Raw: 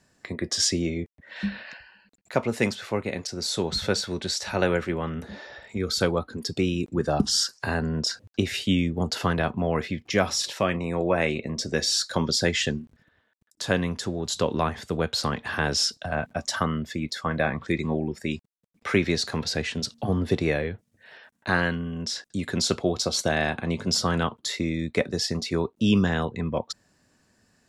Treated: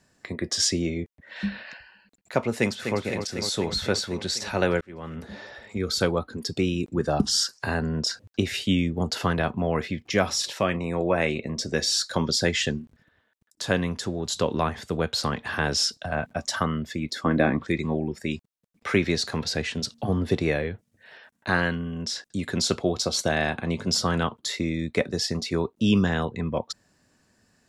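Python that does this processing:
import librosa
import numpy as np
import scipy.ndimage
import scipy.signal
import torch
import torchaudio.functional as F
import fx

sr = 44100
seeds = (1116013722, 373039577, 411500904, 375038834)

y = fx.echo_throw(x, sr, start_s=2.54, length_s=0.45, ms=250, feedback_pct=75, wet_db=-7.0)
y = fx.peak_eq(y, sr, hz=290.0, db=13.5, octaves=0.91, at=(17.11, 17.63))
y = fx.edit(y, sr, fx.fade_in_span(start_s=4.81, length_s=0.53), tone=tone)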